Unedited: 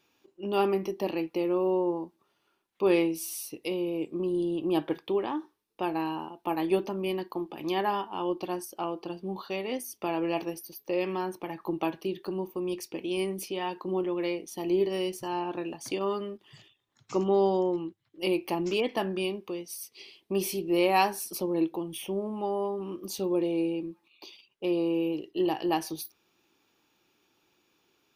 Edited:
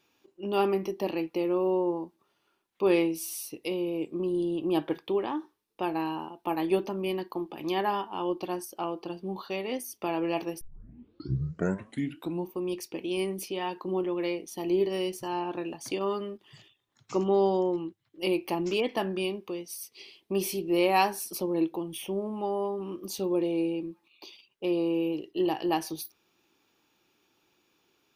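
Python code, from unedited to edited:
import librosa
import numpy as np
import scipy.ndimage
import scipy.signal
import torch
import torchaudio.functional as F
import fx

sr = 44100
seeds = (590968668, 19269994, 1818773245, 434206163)

y = fx.edit(x, sr, fx.tape_start(start_s=10.61, length_s=1.9), tone=tone)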